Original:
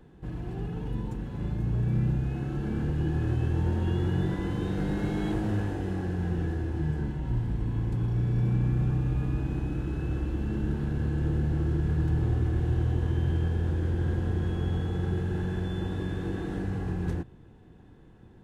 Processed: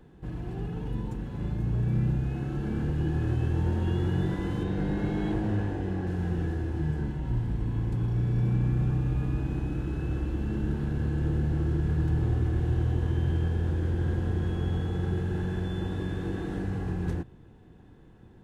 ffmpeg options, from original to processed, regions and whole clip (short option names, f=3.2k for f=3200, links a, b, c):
-filter_complex "[0:a]asettb=1/sr,asplit=3[a][b][c];[a]atrim=end=4.634[d];[b]atrim=start=4.63:end=6.07,asetpts=PTS-STARTPTS,afade=t=in:d=0.004:c=qsin,afade=t=out:st=1.436:d=0.004:c=qsin,aemphasis=mode=reproduction:type=cd,bandreject=f=1.3k:w=14[e];[c]atrim=start=6.066[f];[d][e]acrossfade=d=0.004:c1=hsin:c2=qsin[g];[g][f]acrossfade=d=0.004:c1=qsin:c2=hsin"